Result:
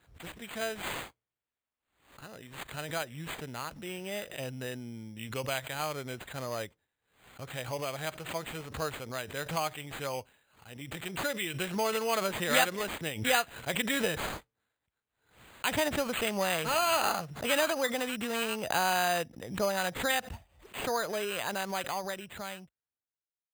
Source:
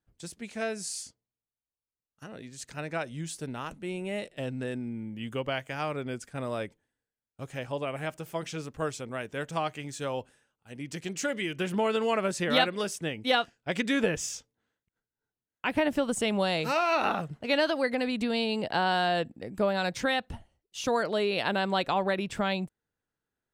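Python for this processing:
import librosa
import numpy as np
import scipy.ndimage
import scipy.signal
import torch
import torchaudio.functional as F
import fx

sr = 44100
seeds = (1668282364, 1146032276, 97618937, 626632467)

y = fx.fade_out_tail(x, sr, length_s=3.07)
y = scipy.signal.sosfilt(scipy.signal.butter(4, 45.0, 'highpass', fs=sr, output='sos'), y)
y = fx.peak_eq(y, sr, hz=250.0, db=-8.0, octaves=1.9)
y = np.repeat(y[::8], 8)[:len(y)]
y = fx.pre_swell(y, sr, db_per_s=110.0)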